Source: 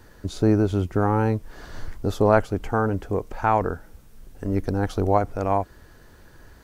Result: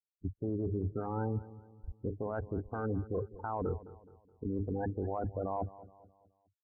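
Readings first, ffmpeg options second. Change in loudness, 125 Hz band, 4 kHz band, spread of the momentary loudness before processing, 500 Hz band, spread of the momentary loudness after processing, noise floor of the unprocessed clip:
-14.0 dB, -12.0 dB, under -40 dB, 15 LU, -13.5 dB, 11 LU, -50 dBFS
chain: -filter_complex "[0:a]highpass=45,bandreject=f=50:t=h:w=6,bandreject=f=100:t=h:w=6,bandreject=f=150:t=h:w=6,bandreject=f=200:t=h:w=6,bandreject=f=250:t=h:w=6,bandreject=f=300:t=h:w=6,bandreject=f=350:t=h:w=6,bandreject=f=400:t=h:w=6,bandreject=f=450:t=h:w=6,acrossover=split=3500[a][b];[b]acompressor=threshold=-59dB:ratio=4:attack=1:release=60[c];[a][c]amix=inputs=2:normalize=0,afftfilt=real='re*gte(hypot(re,im),0.112)':imag='im*gte(hypot(re,im),0.112)':win_size=1024:overlap=0.75,areverse,acompressor=threshold=-27dB:ratio=12,areverse,alimiter=level_in=2.5dB:limit=-24dB:level=0:latency=1:release=11,volume=-2.5dB,asplit=2[d][e];[e]adelay=211,lowpass=f=2.2k:p=1,volume=-17dB,asplit=2[f][g];[g]adelay=211,lowpass=f=2.2k:p=1,volume=0.44,asplit=2[h][i];[i]adelay=211,lowpass=f=2.2k:p=1,volume=0.44,asplit=2[j][k];[k]adelay=211,lowpass=f=2.2k:p=1,volume=0.44[l];[f][h][j][l]amix=inputs=4:normalize=0[m];[d][m]amix=inputs=2:normalize=0" -ar 32000 -c:a libvorbis -b:a 96k

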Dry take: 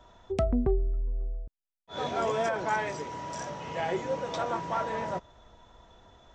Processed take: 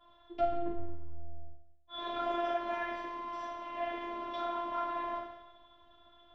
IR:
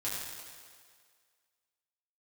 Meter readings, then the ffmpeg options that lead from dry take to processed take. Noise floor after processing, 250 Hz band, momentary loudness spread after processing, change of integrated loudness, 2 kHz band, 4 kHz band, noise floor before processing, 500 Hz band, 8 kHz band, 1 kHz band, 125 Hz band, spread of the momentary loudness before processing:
-62 dBFS, -7.5 dB, 17 LU, -5.5 dB, -7.0 dB, -3.5 dB, under -85 dBFS, -6.5 dB, under -20 dB, -3.0 dB, under -15 dB, 9 LU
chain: -filter_complex "[1:a]atrim=start_sample=2205,asetrate=83790,aresample=44100[a];[0:a][a]afir=irnorm=-1:irlink=0,afftfilt=real='hypot(re,im)*cos(PI*b)':imag='0':win_size=512:overlap=0.75,lowpass=f=3.9k:w=0.5412,lowpass=f=3.9k:w=1.3066"

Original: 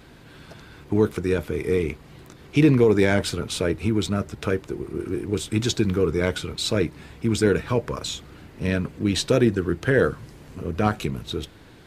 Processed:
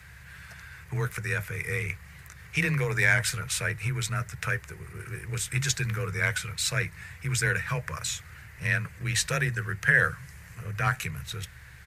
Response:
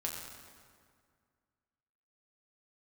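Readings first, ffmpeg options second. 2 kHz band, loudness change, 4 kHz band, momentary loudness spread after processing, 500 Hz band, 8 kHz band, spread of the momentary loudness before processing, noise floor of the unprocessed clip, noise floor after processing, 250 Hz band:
+5.0 dB, -4.5 dB, -4.0 dB, 20 LU, -15.0 dB, +3.0 dB, 12 LU, -48 dBFS, -49 dBFS, -16.0 dB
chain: -af "aeval=exprs='val(0)+0.00355*(sin(2*PI*50*n/s)+sin(2*PI*2*50*n/s)/2+sin(2*PI*3*50*n/s)/3+sin(2*PI*4*50*n/s)/4+sin(2*PI*5*50*n/s)/5)':c=same,firequalizer=gain_entry='entry(110,0);entry(230,-25);entry(460,-13);entry(1800,10);entry(3300,-5);entry(6200,4);entry(12000,7)':delay=0.05:min_phase=1,afreqshift=20,volume=-1.5dB"

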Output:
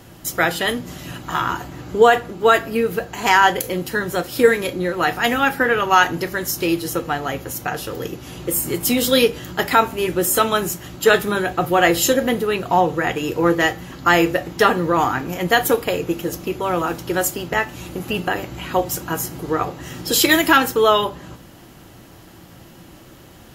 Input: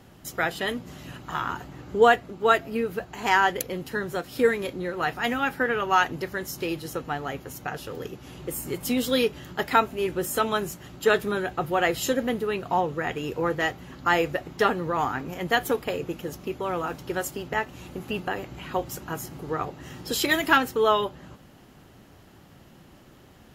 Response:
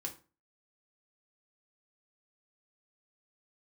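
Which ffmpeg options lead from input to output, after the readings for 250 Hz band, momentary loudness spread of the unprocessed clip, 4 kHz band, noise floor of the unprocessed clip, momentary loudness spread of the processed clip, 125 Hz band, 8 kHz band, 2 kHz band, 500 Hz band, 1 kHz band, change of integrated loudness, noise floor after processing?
+8.0 dB, 13 LU, +9.0 dB, -52 dBFS, 11 LU, +7.5 dB, +12.0 dB, +7.0 dB, +7.0 dB, +7.0 dB, +7.5 dB, -44 dBFS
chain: -filter_complex "[0:a]highshelf=f=5.3k:g=6.5,asplit=2[a][b];[1:a]atrim=start_sample=2205[c];[b][c]afir=irnorm=-1:irlink=0,volume=-1.5dB[d];[a][d]amix=inputs=2:normalize=0,alimiter=level_in=4.5dB:limit=-1dB:release=50:level=0:latency=1,volume=-1dB"

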